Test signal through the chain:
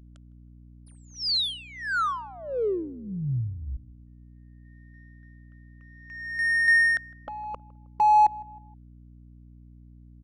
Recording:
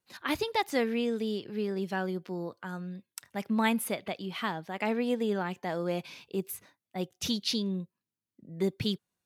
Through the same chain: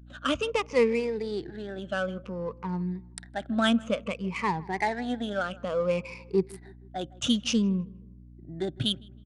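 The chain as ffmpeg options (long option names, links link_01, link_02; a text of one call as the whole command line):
ffmpeg -i in.wav -filter_complex "[0:a]afftfilt=real='re*pow(10,20/40*sin(2*PI*(0.83*log(max(b,1)*sr/1024/100)/log(2)-(-0.57)*(pts-256)/sr)))':imag='im*pow(10,20/40*sin(2*PI*(0.83*log(max(b,1)*sr/1024/100)/log(2)-(-0.57)*(pts-256)/sr)))':win_size=1024:overlap=0.75,aeval=exprs='val(0)+0.00398*(sin(2*PI*60*n/s)+sin(2*PI*2*60*n/s)/2+sin(2*PI*3*60*n/s)/3+sin(2*PI*4*60*n/s)/4+sin(2*PI*5*60*n/s)/5)':channel_layout=same,adynamicsmooth=sensitivity=7.5:basefreq=2000,asplit=2[link_01][link_02];[link_02]adelay=158,lowpass=frequency=1400:poles=1,volume=-21.5dB,asplit=2[link_03][link_04];[link_04]adelay=158,lowpass=frequency=1400:poles=1,volume=0.46,asplit=2[link_05][link_06];[link_06]adelay=158,lowpass=frequency=1400:poles=1,volume=0.46[link_07];[link_03][link_05][link_07]amix=inputs=3:normalize=0[link_08];[link_01][link_08]amix=inputs=2:normalize=0,aresample=22050,aresample=44100" out.wav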